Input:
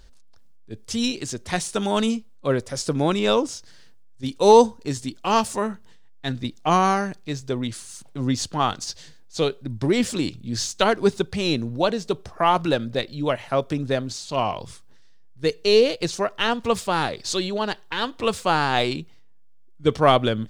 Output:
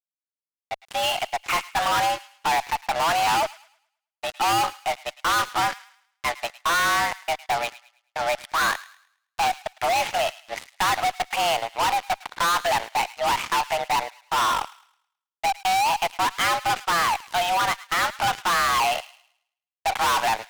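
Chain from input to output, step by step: mistuned SSB +340 Hz 400–2700 Hz; fuzz box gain 39 dB, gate -42 dBFS; feedback echo behind a high-pass 107 ms, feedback 34%, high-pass 1.4 kHz, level -16 dB; trim -6.5 dB

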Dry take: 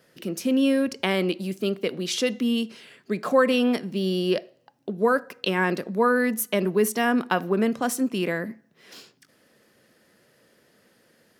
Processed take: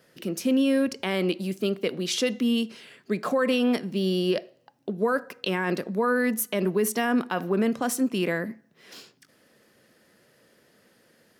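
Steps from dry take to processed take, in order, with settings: peak limiter -15 dBFS, peak gain reduction 8 dB

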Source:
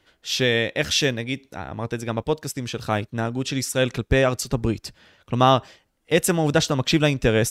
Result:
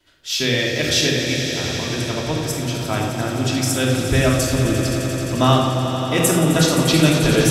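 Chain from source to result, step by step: treble shelf 3.3 kHz +8.5 dB; echo with a slow build-up 87 ms, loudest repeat 5, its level -12 dB; reverberation RT60 0.95 s, pre-delay 3 ms, DRR -9.5 dB; trim -10.5 dB

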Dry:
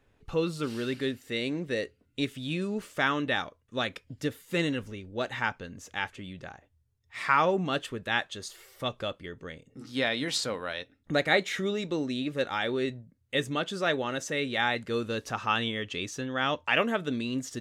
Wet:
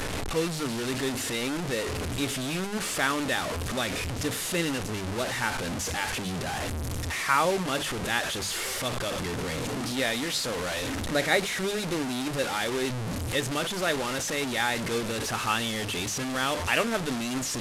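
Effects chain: one-bit delta coder 64 kbps, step -25 dBFS; hum notches 50/100/150/200 Hz

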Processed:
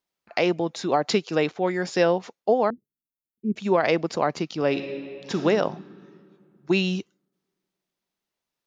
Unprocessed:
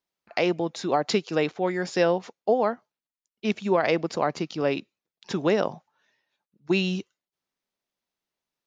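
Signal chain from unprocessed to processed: 2.70–3.56 s: inverse Chebyshev band-stop 660–6600 Hz, stop band 40 dB; 4.67–5.40 s: reverb throw, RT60 2.5 s, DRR 4.5 dB; trim +1.5 dB

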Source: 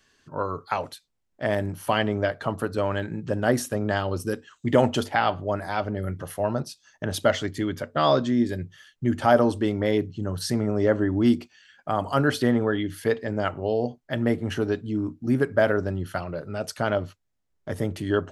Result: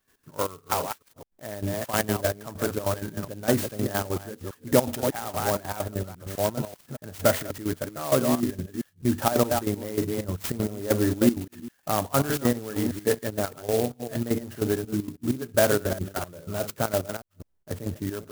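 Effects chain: chunks repeated in reverse 205 ms, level -7 dB; trance gate ".x.x.x...xxx" 194 bpm -12 dB; sampling jitter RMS 0.081 ms

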